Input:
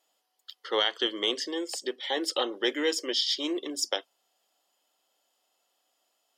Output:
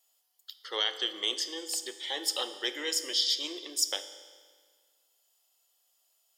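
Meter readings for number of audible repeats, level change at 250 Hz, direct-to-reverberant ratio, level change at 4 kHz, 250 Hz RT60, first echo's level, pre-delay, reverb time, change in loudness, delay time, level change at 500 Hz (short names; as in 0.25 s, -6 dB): none, -11.5 dB, 10.0 dB, -0.5 dB, 1.7 s, none, 10 ms, 1.7 s, -1.5 dB, none, -9.5 dB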